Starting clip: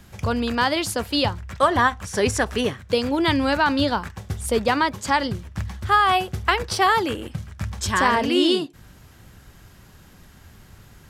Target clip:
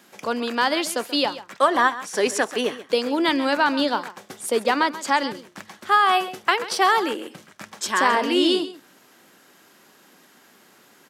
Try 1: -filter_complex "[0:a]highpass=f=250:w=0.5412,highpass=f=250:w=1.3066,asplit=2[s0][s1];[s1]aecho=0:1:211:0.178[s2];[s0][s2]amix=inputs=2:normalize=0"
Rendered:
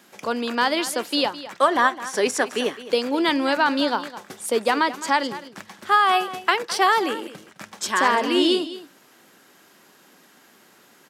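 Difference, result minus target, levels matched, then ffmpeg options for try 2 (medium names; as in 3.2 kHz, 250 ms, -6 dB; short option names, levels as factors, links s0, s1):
echo 78 ms late
-filter_complex "[0:a]highpass=f=250:w=0.5412,highpass=f=250:w=1.3066,asplit=2[s0][s1];[s1]aecho=0:1:133:0.178[s2];[s0][s2]amix=inputs=2:normalize=0"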